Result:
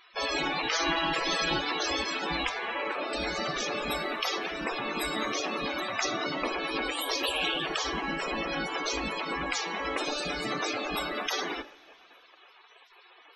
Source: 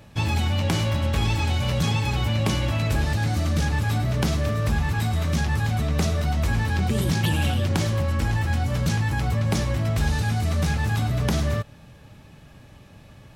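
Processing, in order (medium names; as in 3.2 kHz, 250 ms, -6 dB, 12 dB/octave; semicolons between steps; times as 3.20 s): hum notches 50/100/150/200/250/300/350/400 Hz; spectral gate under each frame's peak -20 dB weak; 0.71–1.60 s: comb 6.1 ms, depth 64%; loudest bins only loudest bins 64; 2.49–3.13 s: band-pass 240–2500 Hz; two-slope reverb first 0.35 s, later 2.5 s, from -15 dB, DRR 13.5 dB; trim +6 dB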